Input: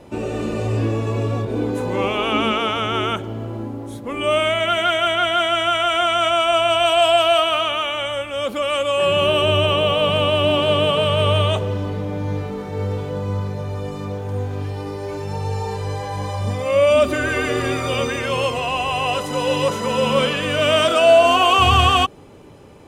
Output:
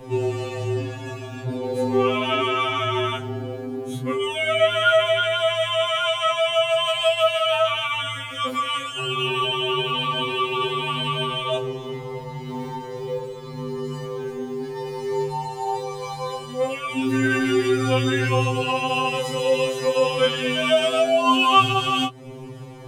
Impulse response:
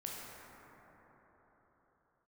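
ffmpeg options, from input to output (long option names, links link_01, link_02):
-af "equalizer=frequency=92:width=0.62:gain=6,acompressor=threshold=-27dB:ratio=2,flanger=delay=18:depth=4.9:speed=0.38,afftfilt=real='re*2.45*eq(mod(b,6),0)':imag='im*2.45*eq(mod(b,6),0)':win_size=2048:overlap=0.75,volume=9dB"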